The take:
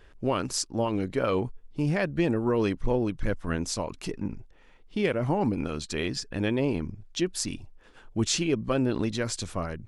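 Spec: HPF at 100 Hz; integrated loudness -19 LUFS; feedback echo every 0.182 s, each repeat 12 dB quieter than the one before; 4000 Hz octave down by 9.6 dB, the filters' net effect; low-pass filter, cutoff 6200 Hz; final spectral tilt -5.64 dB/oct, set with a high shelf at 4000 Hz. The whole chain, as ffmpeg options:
-af "highpass=100,lowpass=6.2k,highshelf=f=4k:g=-5,equalizer=f=4k:t=o:g=-8.5,aecho=1:1:182|364|546:0.251|0.0628|0.0157,volume=10.5dB"

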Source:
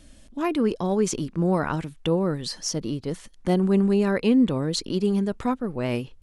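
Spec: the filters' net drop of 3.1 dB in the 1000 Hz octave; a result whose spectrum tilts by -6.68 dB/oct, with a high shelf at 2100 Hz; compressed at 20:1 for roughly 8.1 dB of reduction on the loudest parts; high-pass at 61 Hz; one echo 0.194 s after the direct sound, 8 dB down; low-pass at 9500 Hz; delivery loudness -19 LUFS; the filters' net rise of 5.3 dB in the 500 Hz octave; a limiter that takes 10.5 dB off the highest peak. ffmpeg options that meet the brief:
-af "highpass=61,lowpass=9.5k,equalizer=f=500:t=o:g=8.5,equalizer=f=1k:t=o:g=-7,highshelf=f=2.1k:g=-6.5,acompressor=threshold=-21dB:ratio=20,alimiter=limit=-24dB:level=0:latency=1,aecho=1:1:194:0.398,volume=12.5dB"

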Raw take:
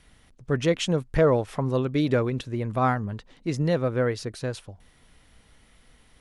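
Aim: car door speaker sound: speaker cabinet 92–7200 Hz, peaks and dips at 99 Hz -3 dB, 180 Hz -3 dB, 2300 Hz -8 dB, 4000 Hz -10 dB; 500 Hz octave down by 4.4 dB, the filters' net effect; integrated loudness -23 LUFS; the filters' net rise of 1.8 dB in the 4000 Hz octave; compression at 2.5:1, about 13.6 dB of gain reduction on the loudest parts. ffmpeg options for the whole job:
-af "equalizer=f=500:t=o:g=-5,equalizer=f=4k:t=o:g=8.5,acompressor=threshold=-40dB:ratio=2.5,highpass=92,equalizer=f=99:t=q:w=4:g=-3,equalizer=f=180:t=q:w=4:g=-3,equalizer=f=2.3k:t=q:w=4:g=-8,equalizer=f=4k:t=q:w=4:g=-10,lowpass=f=7.2k:w=0.5412,lowpass=f=7.2k:w=1.3066,volume=17.5dB"

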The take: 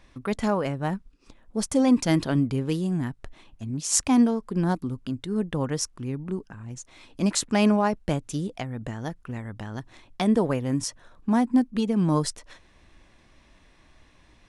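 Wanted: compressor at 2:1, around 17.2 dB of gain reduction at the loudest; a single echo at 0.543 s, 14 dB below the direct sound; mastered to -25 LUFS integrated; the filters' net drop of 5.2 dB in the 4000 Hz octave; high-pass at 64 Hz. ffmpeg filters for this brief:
-af "highpass=64,equalizer=f=4k:t=o:g=-7.5,acompressor=threshold=-48dB:ratio=2,aecho=1:1:543:0.2,volume=16dB"

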